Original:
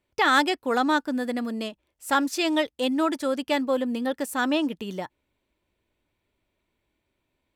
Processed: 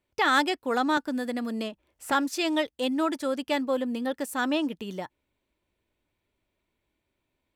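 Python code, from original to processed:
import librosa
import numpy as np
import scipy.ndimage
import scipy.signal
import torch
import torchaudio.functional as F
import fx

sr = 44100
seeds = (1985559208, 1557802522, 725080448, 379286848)

y = fx.band_squash(x, sr, depth_pct=70, at=(0.97, 2.12))
y = y * 10.0 ** (-2.5 / 20.0)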